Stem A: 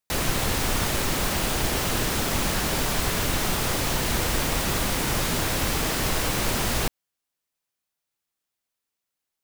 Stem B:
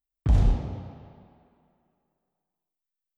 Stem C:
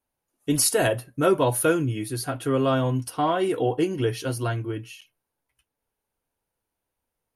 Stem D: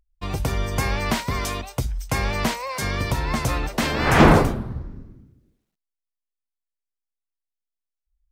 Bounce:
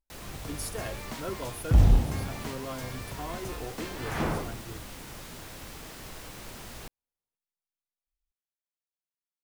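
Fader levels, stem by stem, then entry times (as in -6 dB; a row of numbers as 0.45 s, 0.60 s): -18.5 dB, +1.5 dB, -16.5 dB, -17.0 dB; 0.00 s, 1.45 s, 0.00 s, 0.00 s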